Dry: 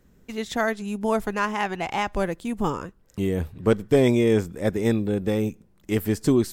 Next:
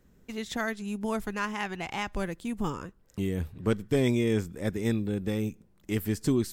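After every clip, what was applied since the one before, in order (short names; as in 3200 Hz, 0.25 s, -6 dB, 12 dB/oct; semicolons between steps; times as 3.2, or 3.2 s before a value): dynamic EQ 640 Hz, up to -7 dB, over -35 dBFS, Q 0.77; gain -3.5 dB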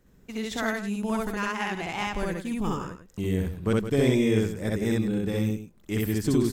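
loudspeakers at several distances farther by 22 m 0 dB, 57 m -10 dB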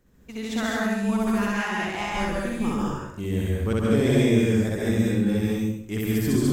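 plate-style reverb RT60 0.56 s, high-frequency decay 0.85×, pre-delay 0.12 s, DRR -2.5 dB; gain -1.5 dB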